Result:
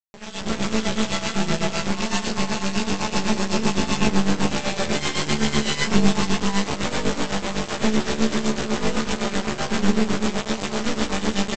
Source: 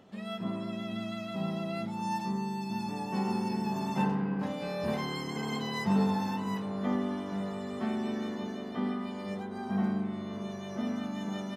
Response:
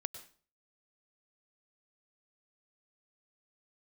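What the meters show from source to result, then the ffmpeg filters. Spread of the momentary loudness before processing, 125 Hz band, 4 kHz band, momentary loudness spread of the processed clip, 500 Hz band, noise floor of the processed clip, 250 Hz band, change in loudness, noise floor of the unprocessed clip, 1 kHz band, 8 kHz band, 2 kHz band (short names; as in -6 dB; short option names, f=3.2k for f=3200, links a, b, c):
7 LU, +8.5 dB, +17.5 dB, 5 LU, +11.0 dB, -32 dBFS, +8.0 dB, +10.0 dB, -40 dBFS, +8.5 dB, +23.5 dB, +15.5 dB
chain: -filter_complex "[0:a]equalizer=f=2.7k:t=o:w=0.77:g=2,bandreject=f=50:t=h:w=6,bandreject=f=100:t=h:w=6,bandreject=f=150:t=h:w=6,bandreject=f=200:t=h:w=6,bandreject=f=250:t=h:w=6,bandreject=f=300:t=h:w=6,bandreject=f=350:t=h:w=6,bandreject=f=400:t=h:w=6,bandreject=f=450:t=h:w=6,aecho=1:1:425|850|1275|1700|2125|2550:0.237|0.135|0.077|0.0439|0.025|0.0143,acrossover=split=440|1400[a][b][c];[b]acompressor=threshold=-46dB:ratio=6[d];[a][d][c]amix=inputs=3:normalize=0,flanger=delay=18.5:depth=6.8:speed=1.3,aresample=16000,acrusher=bits=4:dc=4:mix=0:aa=0.000001,aresample=44100,tremolo=f=7.9:d=0.75,asplit=2[e][f];[f]adelay=14,volume=-3dB[g];[e][g]amix=inputs=2:normalize=0,dynaudnorm=f=110:g=7:m=15dB,volume=4.5dB"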